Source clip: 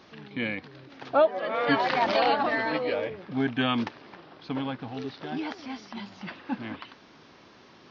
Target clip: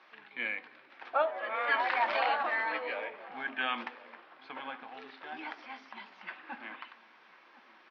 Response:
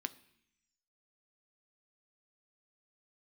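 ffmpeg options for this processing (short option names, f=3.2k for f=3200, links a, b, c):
-filter_complex "[0:a]highpass=720,lowpass=2.5k,asplit=2[a][b];[b]adelay=1050,volume=-18dB,highshelf=f=4k:g=-23.6[c];[a][c]amix=inputs=2:normalize=0[d];[1:a]atrim=start_sample=2205[e];[d][e]afir=irnorm=-1:irlink=0"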